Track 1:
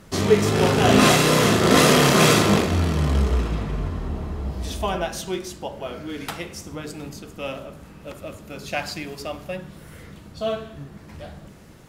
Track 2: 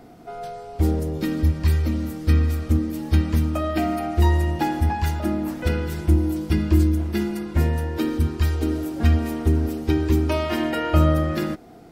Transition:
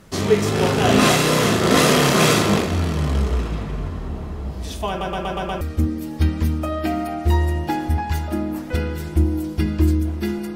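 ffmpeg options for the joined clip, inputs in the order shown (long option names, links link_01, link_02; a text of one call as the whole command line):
ffmpeg -i cue0.wav -i cue1.wav -filter_complex "[0:a]apad=whole_dur=10.55,atrim=end=10.55,asplit=6[link_01][link_02][link_03][link_04][link_05][link_06];[link_01]atrim=end=5.012[link_07];[link_02]atrim=start=4.888:end=5.012[link_08];[link_03]atrim=start=4.888:end=5.012[link_09];[link_04]atrim=start=4.888:end=5.012[link_10];[link_05]atrim=start=4.888:end=5.012[link_11];[link_06]atrim=start=4.888:end=5.012[link_12];[1:a]atrim=start=2.528:end=7.47[link_13];[link_07][link_08]acrossfade=duration=0.004:curve1=hsin:curve2=hsin[link_14];[link_14][link_09]acrossfade=duration=0.004:curve1=hsin:curve2=hsin[link_15];[link_15][link_10]acrossfade=duration=0.004:curve1=hsin:curve2=hsin[link_16];[link_16][link_11]acrossfade=duration=0.004:curve1=hsin:curve2=hsin[link_17];[link_17][link_12]acrossfade=duration=0.004:curve1=hsin:curve2=hsin[link_18];[link_18][link_13]acrossfade=duration=0.004:curve1=hsin:curve2=hsin" out.wav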